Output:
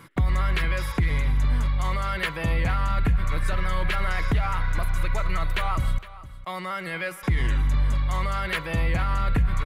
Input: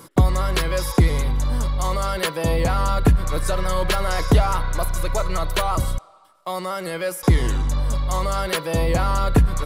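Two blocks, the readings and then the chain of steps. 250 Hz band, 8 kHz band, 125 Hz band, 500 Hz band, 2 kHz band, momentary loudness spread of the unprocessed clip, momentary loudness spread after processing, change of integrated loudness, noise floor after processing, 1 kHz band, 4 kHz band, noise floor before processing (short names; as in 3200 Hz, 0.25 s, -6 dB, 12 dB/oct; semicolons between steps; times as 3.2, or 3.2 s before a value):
-7.5 dB, -13.0 dB, -4.0 dB, -10.5 dB, +0.5 dB, 7 LU, 6 LU, -4.0 dB, -41 dBFS, -5.5 dB, -6.5 dB, -49 dBFS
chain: EQ curve 120 Hz 0 dB, 510 Hz -10 dB, 1100 Hz -4 dB, 2100 Hz +5 dB, 5600 Hz -12 dB; limiter -15.5 dBFS, peak gain reduction 8.5 dB; on a send: echo 0.461 s -17.5 dB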